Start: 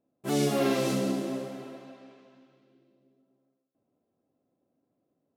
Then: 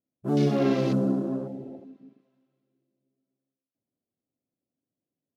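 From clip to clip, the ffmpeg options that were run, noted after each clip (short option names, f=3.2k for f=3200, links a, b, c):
-af "afwtdn=0.0112,lowshelf=f=340:g=11,volume=-2.5dB"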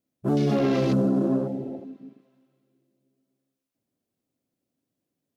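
-af "alimiter=limit=-21.5dB:level=0:latency=1:release=19,volume=6.5dB"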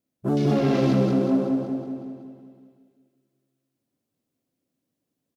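-af "aecho=1:1:187|374|561|748|935|1122|1309:0.562|0.304|0.164|0.0885|0.0478|0.0258|0.0139"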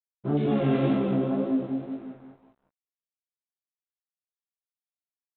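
-af "aresample=8000,aeval=exprs='sgn(val(0))*max(abs(val(0))-0.00447,0)':c=same,aresample=44100,flanger=delay=18:depth=4.4:speed=2"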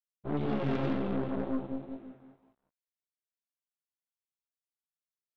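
-af "aeval=exprs='0.251*(cos(1*acos(clip(val(0)/0.251,-1,1)))-cos(1*PI/2))+0.0316*(cos(8*acos(clip(val(0)/0.251,-1,1)))-cos(8*PI/2))':c=same,volume=-8dB"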